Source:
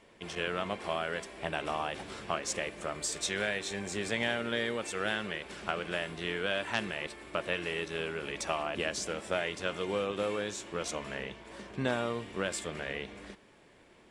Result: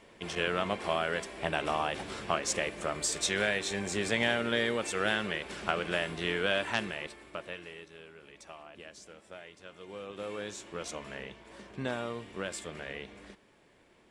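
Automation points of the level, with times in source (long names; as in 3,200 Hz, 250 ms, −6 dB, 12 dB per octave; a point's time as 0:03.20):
0:06.57 +3 dB
0:07.17 −3.5 dB
0:08.00 −15.5 dB
0:09.70 −15.5 dB
0:10.45 −3.5 dB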